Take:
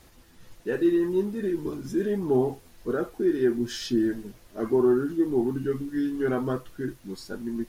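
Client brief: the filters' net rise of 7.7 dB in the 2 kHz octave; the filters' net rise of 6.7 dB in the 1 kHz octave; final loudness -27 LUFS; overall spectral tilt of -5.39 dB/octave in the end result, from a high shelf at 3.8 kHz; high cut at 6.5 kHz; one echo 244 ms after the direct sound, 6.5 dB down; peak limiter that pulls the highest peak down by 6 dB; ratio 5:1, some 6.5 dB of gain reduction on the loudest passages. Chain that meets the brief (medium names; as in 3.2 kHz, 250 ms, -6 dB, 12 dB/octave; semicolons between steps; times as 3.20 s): low-pass 6.5 kHz; peaking EQ 1 kHz +7 dB; peaking EQ 2 kHz +9 dB; treble shelf 3.8 kHz -8 dB; compression 5:1, threshold -24 dBFS; peak limiter -21.5 dBFS; delay 244 ms -6.5 dB; trim +3.5 dB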